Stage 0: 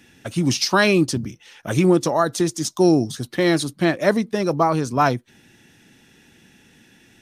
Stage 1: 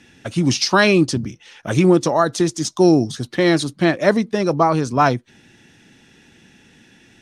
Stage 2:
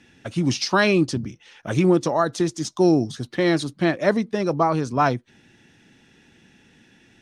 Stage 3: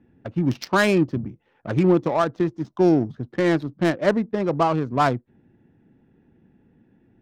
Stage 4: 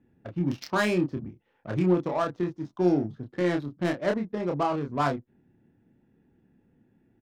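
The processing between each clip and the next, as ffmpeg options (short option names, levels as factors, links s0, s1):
-af "lowpass=8000,volume=1.33"
-af "highshelf=f=5700:g=-5,volume=0.631"
-af "adynamicsmooth=sensitivity=1.5:basefreq=720"
-filter_complex "[0:a]asplit=2[s0][s1];[s1]adelay=28,volume=0.596[s2];[s0][s2]amix=inputs=2:normalize=0,volume=0.422"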